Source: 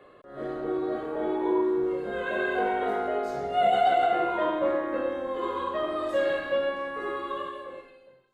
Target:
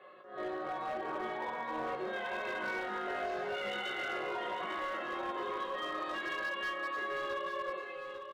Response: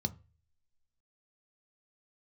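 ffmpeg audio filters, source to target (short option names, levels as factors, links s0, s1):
-filter_complex "[0:a]lowpass=3800,afftfilt=real='re*lt(hypot(re,im),0.224)':imag='im*lt(hypot(re,im),0.224)':win_size=1024:overlap=0.75,highpass=f=800:p=1,aecho=1:1:5.4:0.63,dynaudnorm=f=550:g=3:m=2.24,alimiter=limit=0.0794:level=0:latency=1:release=176,acompressor=threshold=0.02:ratio=16,flanger=delay=18.5:depth=3.5:speed=0.33,volume=63.1,asoftclip=hard,volume=0.0158,asplit=2[s0][s1];[s1]aecho=0:1:847:0.398[s2];[s0][s2]amix=inputs=2:normalize=0,volume=1.5"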